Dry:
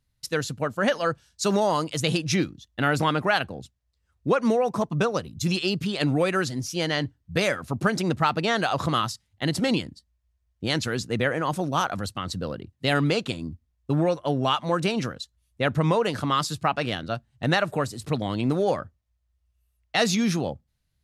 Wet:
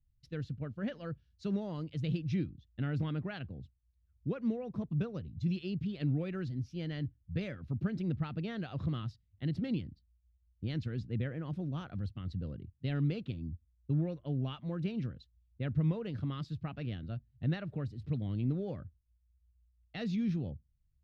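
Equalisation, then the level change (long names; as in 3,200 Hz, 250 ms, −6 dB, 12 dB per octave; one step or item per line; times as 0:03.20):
high-frequency loss of the air 320 metres
guitar amp tone stack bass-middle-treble 10-0-1
+8.5 dB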